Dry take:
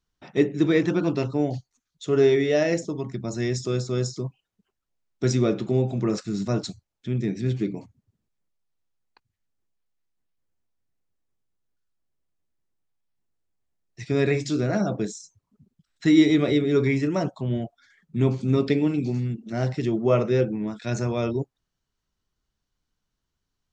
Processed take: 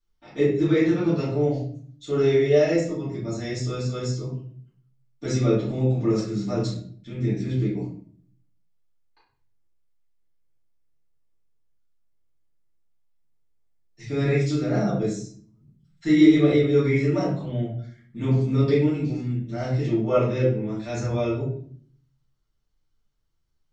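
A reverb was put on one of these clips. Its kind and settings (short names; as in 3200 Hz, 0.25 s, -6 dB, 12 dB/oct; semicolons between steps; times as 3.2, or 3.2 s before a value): shoebox room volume 66 m³, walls mixed, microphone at 2.5 m; gain -12 dB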